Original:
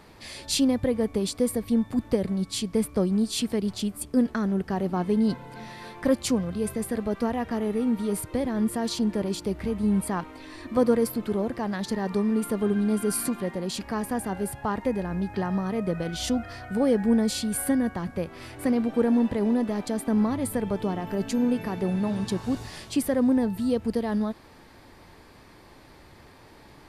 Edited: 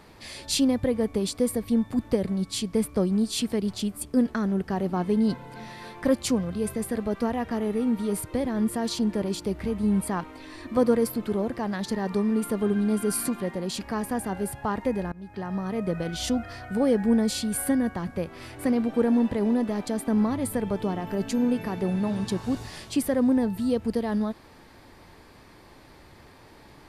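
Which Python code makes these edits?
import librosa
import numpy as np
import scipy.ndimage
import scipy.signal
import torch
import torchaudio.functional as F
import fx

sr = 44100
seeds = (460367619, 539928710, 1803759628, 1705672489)

y = fx.edit(x, sr, fx.fade_in_from(start_s=15.12, length_s=0.93, curve='qsin', floor_db=-22.0), tone=tone)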